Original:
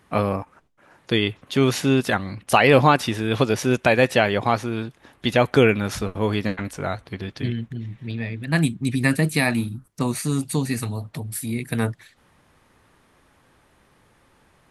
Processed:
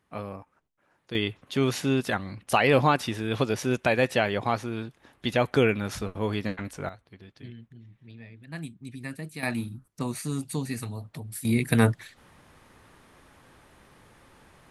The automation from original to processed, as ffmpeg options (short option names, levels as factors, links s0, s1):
-af "asetnsamples=n=441:p=0,asendcmd='1.15 volume volume -6dB;6.89 volume volume -17.5dB;9.43 volume volume -7.5dB;11.45 volume volume 3dB',volume=0.188"